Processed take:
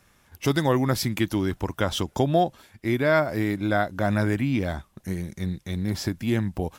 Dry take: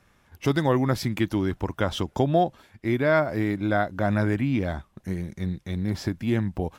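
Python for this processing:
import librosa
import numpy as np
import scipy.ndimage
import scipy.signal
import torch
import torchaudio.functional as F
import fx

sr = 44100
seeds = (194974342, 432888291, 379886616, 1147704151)

y = fx.high_shelf(x, sr, hz=4600.0, db=9.5)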